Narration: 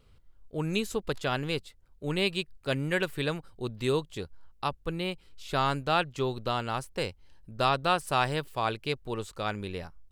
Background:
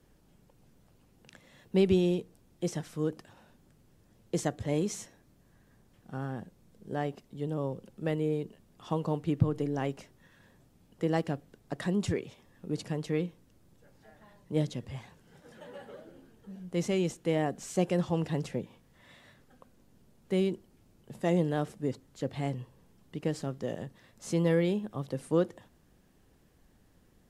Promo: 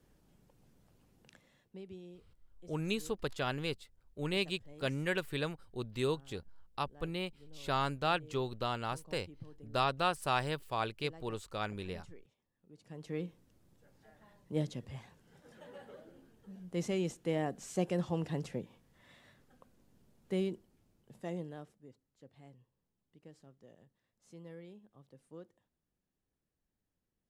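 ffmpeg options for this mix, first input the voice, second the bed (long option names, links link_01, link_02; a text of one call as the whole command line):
ffmpeg -i stem1.wav -i stem2.wav -filter_complex "[0:a]adelay=2150,volume=-5.5dB[link_01];[1:a]volume=15.5dB,afade=type=out:start_time=1.15:duration=0.63:silence=0.0944061,afade=type=in:start_time=12.8:duration=0.55:silence=0.105925,afade=type=out:start_time=20.25:duration=1.58:silence=0.112202[link_02];[link_01][link_02]amix=inputs=2:normalize=0" out.wav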